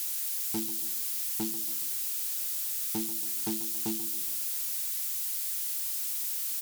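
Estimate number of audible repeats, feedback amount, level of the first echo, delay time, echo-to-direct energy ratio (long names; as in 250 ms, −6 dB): 4, 45%, −13.0 dB, 139 ms, −12.0 dB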